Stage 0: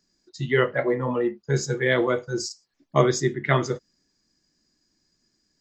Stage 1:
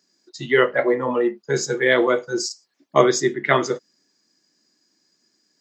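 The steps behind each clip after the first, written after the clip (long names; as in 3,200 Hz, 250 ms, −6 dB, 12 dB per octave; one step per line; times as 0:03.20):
high-pass filter 260 Hz 12 dB per octave
level +5 dB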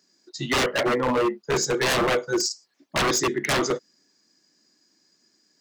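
wave folding −18 dBFS
level +1.5 dB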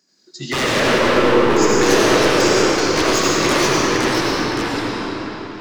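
comb and all-pass reverb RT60 3.7 s, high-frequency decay 0.8×, pre-delay 40 ms, DRR −5.5 dB
delay with pitch and tempo change per echo 87 ms, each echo −2 semitones, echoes 2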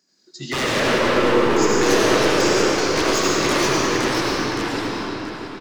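single-tap delay 679 ms −13 dB
level −3 dB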